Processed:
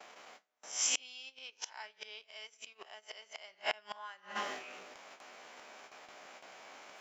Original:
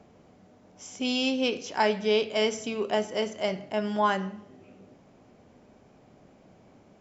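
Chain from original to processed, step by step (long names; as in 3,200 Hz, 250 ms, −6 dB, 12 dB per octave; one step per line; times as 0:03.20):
peak hold with a rise ahead of every peak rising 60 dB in 0.42 s
high-pass filter 1,300 Hz 12 dB per octave
noise gate with hold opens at −57 dBFS
high-shelf EQ 6,100 Hz −5 dB
transient designer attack +1 dB, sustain −11 dB, from 0:03.02 sustain −3 dB, from 0:04.35 sustain +11 dB
gate with flip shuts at −33 dBFS, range −32 dB
level +14 dB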